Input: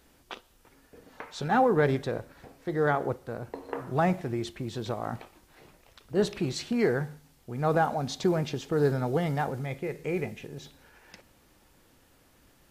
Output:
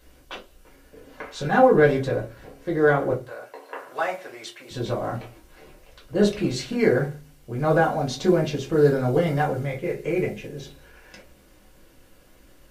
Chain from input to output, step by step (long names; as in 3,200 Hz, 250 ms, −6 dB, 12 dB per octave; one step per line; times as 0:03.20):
0:03.21–0:04.71: high-pass filter 770 Hz 12 dB per octave
convolution reverb RT60 0.20 s, pre-delay 4 ms, DRR −2 dB